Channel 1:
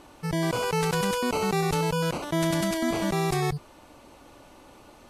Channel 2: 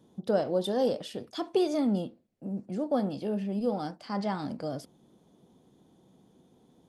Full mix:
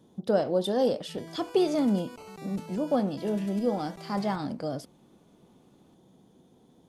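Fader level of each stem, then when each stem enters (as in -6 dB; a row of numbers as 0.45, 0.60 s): -19.5, +2.0 dB; 0.85, 0.00 s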